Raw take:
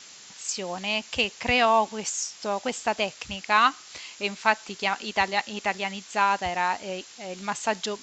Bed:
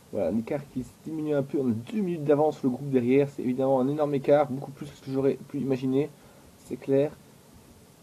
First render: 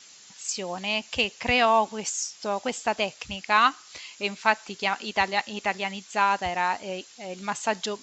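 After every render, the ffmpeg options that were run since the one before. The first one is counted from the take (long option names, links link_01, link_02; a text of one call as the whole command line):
ffmpeg -i in.wav -af "afftdn=noise_reduction=6:noise_floor=-47" out.wav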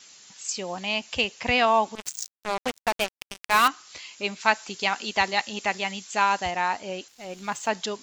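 ffmpeg -i in.wav -filter_complex "[0:a]asettb=1/sr,asplit=3[link_01][link_02][link_03];[link_01]atrim=end=1.954[link_04];[link_02]atrim=start=1.95:end=3.68,asetpts=PTS-STARTPTS,afade=type=in:duration=0.004:curve=qsin,afade=type=out:start_time=1.726:duration=0.004:curve=qsin,acrusher=bits=3:mix=0:aa=0.5[link_05];[link_03]atrim=start=3.676[link_06];[link_04][link_05]acrossfade=duration=0.004:curve1=hsin:curve2=qsin[link_07];[link_07][link_06]acrossfade=duration=0.004:curve1=qsin:curve2=hsin,asettb=1/sr,asplit=3[link_08][link_09][link_10];[link_08]atrim=end=4.404[link_11];[link_09]atrim=start=4.4:end=6.51,asetpts=PTS-STARTPTS,afade=type=in:duration=0.004:curve=qsin,afade=type=out:start_time=2.106:duration=0.004:curve=qsin,highshelf=frequency=4300:gain=7[link_12];[link_10]atrim=start=6.506[link_13];[link_11][link_12]acrossfade=duration=0.004:curve1=hsin:curve2=qsin[link_14];[link_14][link_13]acrossfade=duration=0.004:curve1=qsin:curve2=hsin,asettb=1/sr,asplit=3[link_15][link_16][link_17];[link_15]atrim=end=7.084[link_18];[link_16]atrim=start=7.08:end=7.69,asetpts=PTS-STARTPTS,afade=type=in:duration=0.004:curve=qsin,afade=type=out:start_time=0.606:duration=0.004:curve=qsin,aeval=exprs='sgn(val(0))*max(abs(val(0))-0.00251,0)':channel_layout=same[link_19];[link_17]atrim=start=7.686[link_20];[link_18][link_19]acrossfade=duration=0.004:curve1=hsin:curve2=qsin[link_21];[link_21][link_20]acrossfade=duration=0.004:curve1=qsin:curve2=hsin" out.wav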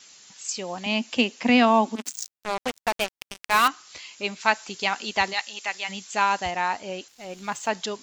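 ffmpeg -i in.wav -filter_complex "[0:a]asettb=1/sr,asplit=3[link_01][link_02][link_03];[link_01]atrim=end=0.864[link_04];[link_02]atrim=start=0.86:end=2.12,asetpts=PTS-STARTPTS,afade=type=in:duration=0.004:curve=qsin,afade=type=out:start_time=1.256:duration=0.004:curve=qsin,highpass=frequency=240:width_type=q:width=4.9[link_05];[link_03]atrim=start=2.116[link_06];[link_04][link_05]acrossfade=duration=0.004:curve1=hsin:curve2=qsin[link_07];[link_07][link_06]acrossfade=duration=0.004:curve1=qsin:curve2=hsin,asplit=3[link_08][link_09][link_10];[link_08]afade=type=out:start_time=5.32:duration=0.02[link_11];[link_09]highpass=frequency=1400:poles=1,afade=type=in:start_time=5.32:duration=0.02,afade=type=out:start_time=5.88:duration=0.02[link_12];[link_10]afade=type=in:start_time=5.88:duration=0.02[link_13];[link_11][link_12][link_13]amix=inputs=3:normalize=0" out.wav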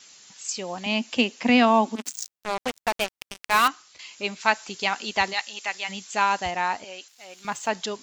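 ffmpeg -i in.wav -filter_complex "[0:a]asettb=1/sr,asplit=3[link_01][link_02][link_03];[link_01]atrim=end=6.844[link_04];[link_02]atrim=start=6.84:end=7.45,asetpts=PTS-STARTPTS,afade=type=in:duration=0.004:curve=qsin,afade=type=out:start_time=0.606:duration=0.004:curve=qsin,highpass=frequency=1300:poles=1[link_05];[link_03]atrim=start=7.446[link_06];[link_04][link_05]acrossfade=duration=0.004:curve1=hsin:curve2=qsin[link_07];[link_07][link_06]acrossfade=duration=0.004:curve1=qsin:curve2=hsin,asplit=2[link_08][link_09];[link_08]atrim=end=3.99,asetpts=PTS-STARTPTS,afade=type=out:start_time=3.58:duration=0.41:curve=qsin:silence=0.211349[link_10];[link_09]atrim=start=3.99,asetpts=PTS-STARTPTS,afade=type=in:duration=0.004:curve=hsin:silence=0.211349[link_11];[link_10][link_11]concat=n=2:v=0:a=1" out.wav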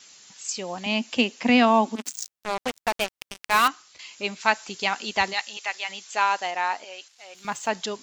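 ffmpeg -i in.wav -filter_complex "[0:a]asettb=1/sr,asplit=3[link_01][link_02][link_03];[link_01]atrim=end=5.574[link_04];[link_02]atrim=start=5.57:end=7.35,asetpts=PTS-STARTPTS,afade=type=in:duration=0.004:curve=qsin,afade=type=out:start_time=1.776:duration=0.004:curve=qsin,highpass=420,lowpass=7600[link_05];[link_03]atrim=start=7.346[link_06];[link_04][link_05]acrossfade=duration=0.004:curve1=hsin:curve2=qsin[link_07];[link_07][link_06]acrossfade=duration=0.004:curve1=qsin:curve2=hsin" out.wav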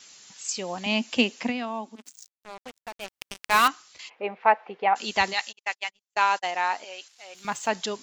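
ffmpeg -i in.wav -filter_complex "[0:a]asplit=3[link_01][link_02][link_03];[link_01]afade=type=out:start_time=4.08:duration=0.02[link_04];[link_02]highpass=270,equalizer=frequency=280:width_type=q:width=4:gain=-5,equalizer=frequency=490:width_type=q:width=4:gain=9,equalizer=frequency=770:width_type=q:width=4:gain=9,equalizer=frequency=1500:width_type=q:width=4:gain=-5,lowpass=frequency=2100:width=0.5412,lowpass=frequency=2100:width=1.3066,afade=type=in:start_time=4.08:duration=0.02,afade=type=out:start_time=4.95:duration=0.02[link_05];[link_03]afade=type=in:start_time=4.95:duration=0.02[link_06];[link_04][link_05][link_06]amix=inputs=3:normalize=0,asplit=3[link_07][link_08][link_09];[link_07]afade=type=out:start_time=5.51:duration=0.02[link_10];[link_08]agate=range=-50dB:threshold=-33dB:ratio=16:release=100:detection=peak,afade=type=in:start_time=5.51:duration=0.02,afade=type=out:start_time=6.5:duration=0.02[link_11];[link_09]afade=type=in:start_time=6.5:duration=0.02[link_12];[link_10][link_11][link_12]amix=inputs=3:normalize=0,asplit=3[link_13][link_14][link_15];[link_13]atrim=end=1.53,asetpts=PTS-STARTPTS,afade=type=out:start_time=1.41:duration=0.12:silence=0.199526[link_16];[link_14]atrim=start=1.53:end=3.02,asetpts=PTS-STARTPTS,volume=-14dB[link_17];[link_15]atrim=start=3.02,asetpts=PTS-STARTPTS,afade=type=in:duration=0.12:silence=0.199526[link_18];[link_16][link_17][link_18]concat=n=3:v=0:a=1" out.wav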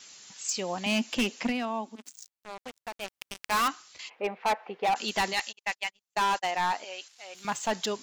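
ffmpeg -i in.wav -af "volume=22dB,asoftclip=hard,volume=-22dB" out.wav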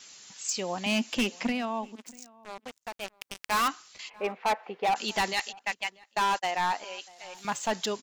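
ffmpeg -i in.wav -filter_complex "[0:a]asplit=2[link_01][link_02];[link_02]adelay=641.4,volume=-23dB,highshelf=frequency=4000:gain=-14.4[link_03];[link_01][link_03]amix=inputs=2:normalize=0" out.wav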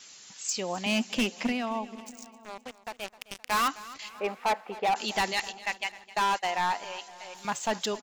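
ffmpeg -i in.wav -af "aecho=1:1:260|520|780|1040:0.126|0.0642|0.0327|0.0167" out.wav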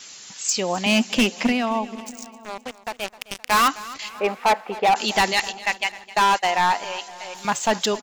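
ffmpeg -i in.wav -af "volume=8.5dB" out.wav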